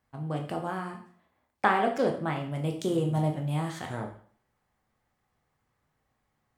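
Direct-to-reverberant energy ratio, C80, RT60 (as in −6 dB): 2.5 dB, 12.0 dB, 0.50 s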